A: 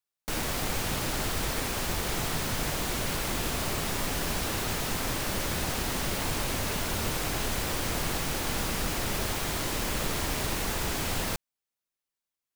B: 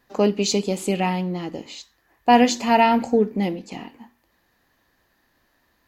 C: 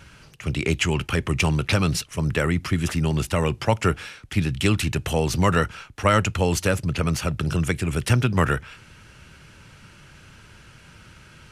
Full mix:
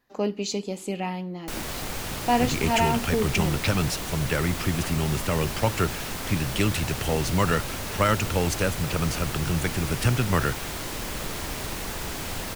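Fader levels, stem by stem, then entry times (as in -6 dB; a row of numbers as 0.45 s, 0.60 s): -2.0 dB, -7.5 dB, -3.5 dB; 1.20 s, 0.00 s, 1.95 s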